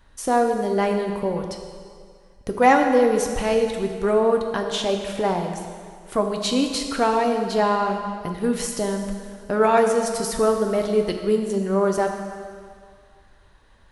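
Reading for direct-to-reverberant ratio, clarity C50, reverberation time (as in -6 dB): 3.5 dB, 5.5 dB, 2.1 s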